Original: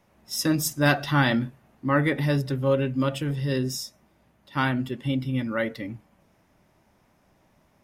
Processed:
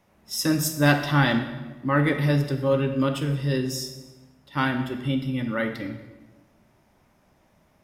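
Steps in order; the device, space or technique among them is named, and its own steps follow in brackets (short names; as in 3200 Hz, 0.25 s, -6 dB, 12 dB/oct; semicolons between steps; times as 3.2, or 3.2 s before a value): saturated reverb return (on a send at -5.5 dB: reverb RT60 1.1 s, pre-delay 11 ms + soft clip -15 dBFS, distortion -18 dB)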